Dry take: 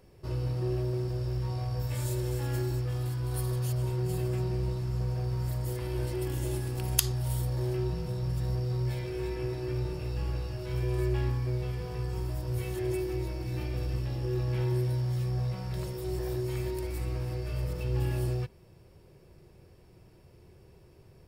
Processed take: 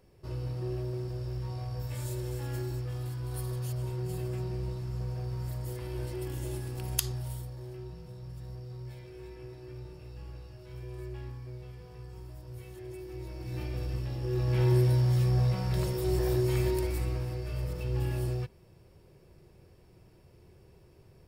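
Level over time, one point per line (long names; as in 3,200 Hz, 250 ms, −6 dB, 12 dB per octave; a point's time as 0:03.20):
0:07.16 −4 dB
0:07.57 −12 dB
0:12.95 −12 dB
0:13.60 −2 dB
0:14.20 −2 dB
0:14.69 +5 dB
0:16.74 +5 dB
0:17.34 −1.5 dB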